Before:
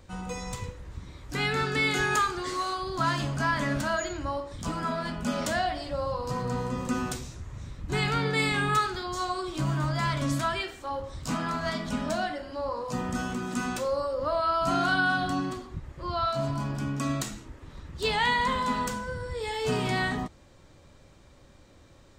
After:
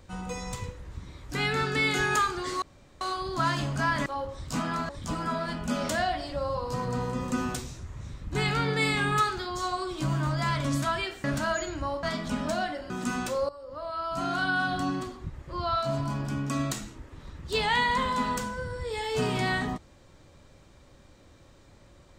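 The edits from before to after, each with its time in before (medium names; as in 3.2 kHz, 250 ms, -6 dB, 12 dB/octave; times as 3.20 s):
2.62 s: insert room tone 0.39 s
3.67–4.46 s: swap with 10.81–11.64 s
12.51–13.40 s: delete
13.99–15.42 s: fade in, from -17 dB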